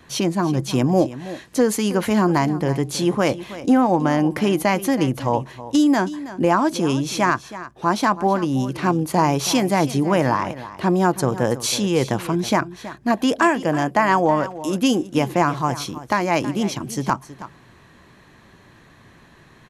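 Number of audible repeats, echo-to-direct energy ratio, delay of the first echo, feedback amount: 1, −15.0 dB, 323 ms, repeats not evenly spaced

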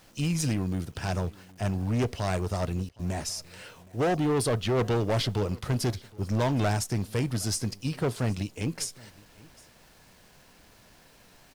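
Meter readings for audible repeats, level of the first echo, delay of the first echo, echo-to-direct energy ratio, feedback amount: 1, −23.5 dB, 767 ms, −23.5 dB, repeats not evenly spaced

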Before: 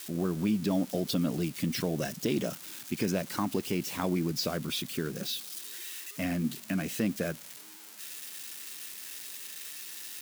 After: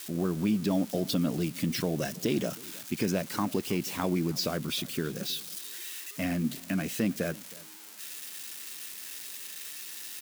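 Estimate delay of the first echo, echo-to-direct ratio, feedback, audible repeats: 317 ms, −22.0 dB, repeats not evenly spaced, 1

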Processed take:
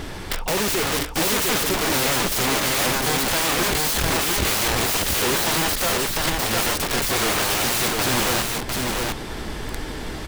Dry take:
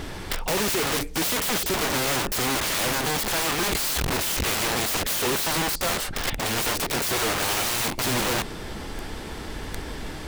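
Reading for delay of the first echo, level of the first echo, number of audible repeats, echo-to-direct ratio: 702 ms, −3.0 dB, 1, −3.0 dB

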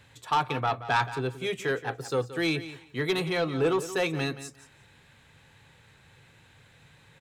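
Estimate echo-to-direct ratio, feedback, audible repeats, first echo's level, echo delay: −14.0 dB, 17%, 2, −14.0 dB, 175 ms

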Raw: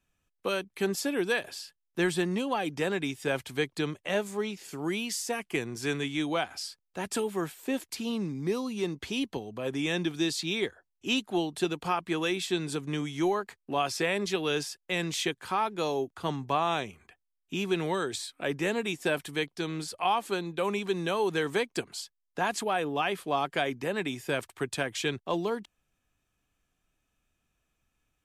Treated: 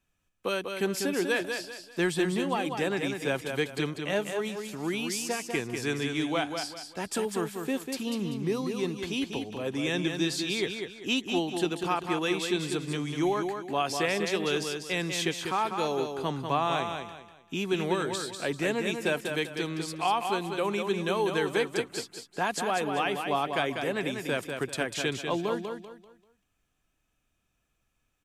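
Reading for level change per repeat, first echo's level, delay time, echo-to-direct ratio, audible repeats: −10.0 dB, −6.0 dB, 195 ms, −5.5 dB, 3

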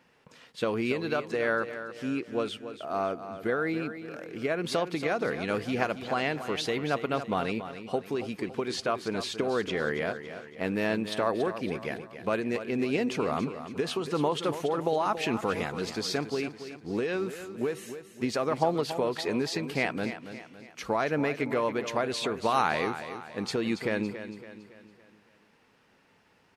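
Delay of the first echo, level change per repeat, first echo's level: 280 ms, −7.0 dB, −11.0 dB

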